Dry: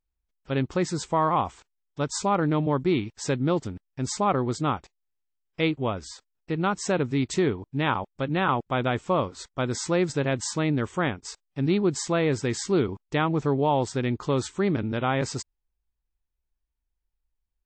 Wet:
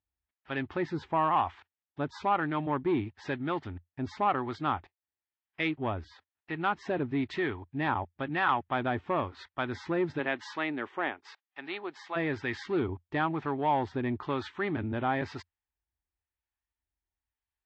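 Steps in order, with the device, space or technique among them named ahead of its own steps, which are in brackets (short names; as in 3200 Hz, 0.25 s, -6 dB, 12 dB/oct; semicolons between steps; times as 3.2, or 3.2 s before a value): 10.18–12.15 HPF 220 Hz -> 890 Hz 12 dB/oct; guitar amplifier with harmonic tremolo (harmonic tremolo 1 Hz, depth 50%, crossover 730 Hz; soft clip -17.5 dBFS, distortion -18 dB; speaker cabinet 82–3500 Hz, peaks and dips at 86 Hz +6 dB, 130 Hz -7 dB, 190 Hz -9 dB, 490 Hz -9 dB, 820 Hz +4 dB, 1800 Hz +6 dB)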